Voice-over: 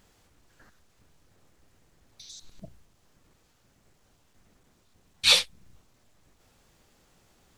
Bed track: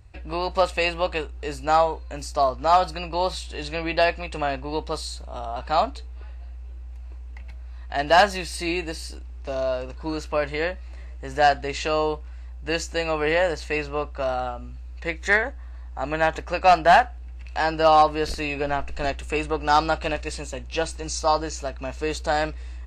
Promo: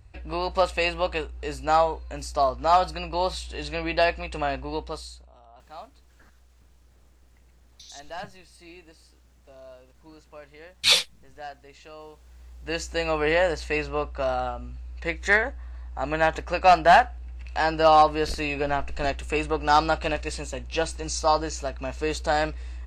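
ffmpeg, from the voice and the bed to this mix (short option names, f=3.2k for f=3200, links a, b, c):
-filter_complex "[0:a]adelay=5600,volume=0.5dB[a];[1:a]volume=19dB,afade=t=out:st=4.62:d=0.74:silence=0.105925,afade=t=in:st=12.15:d=0.94:silence=0.0944061[b];[a][b]amix=inputs=2:normalize=0"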